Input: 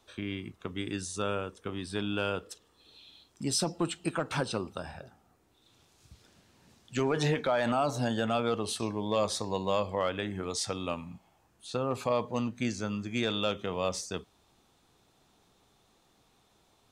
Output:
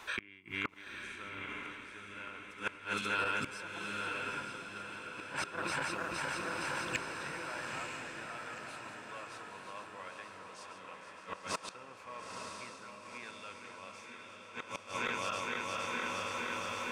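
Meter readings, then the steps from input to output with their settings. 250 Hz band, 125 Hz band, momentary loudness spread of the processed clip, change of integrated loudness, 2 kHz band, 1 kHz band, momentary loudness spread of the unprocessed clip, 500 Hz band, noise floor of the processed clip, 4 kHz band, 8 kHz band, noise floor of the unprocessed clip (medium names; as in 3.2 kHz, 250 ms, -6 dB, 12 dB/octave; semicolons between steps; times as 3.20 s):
-13.5 dB, -15.0 dB, 12 LU, -7.5 dB, +3.0 dB, -3.5 dB, 11 LU, -12.5 dB, -53 dBFS, -6.0 dB, -8.0 dB, -68 dBFS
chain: backward echo that repeats 232 ms, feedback 83%, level -9 dB; bass shelf 260 Hz -8.5 dB; inverted gate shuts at -30 dBFS, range -34 dB; in parallel at -3 dB: compressor with a negative ratio -57 dBFS; on the sum: band-stop 1.2 kHz, Q 7.8; on a send: echo that smears into a reverb 932 ms, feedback 48%, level -4 dB; on the sum: overload inside the chain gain 33 dB; high-order bell 1.6 kHz +12 dB; trim +3.5 dB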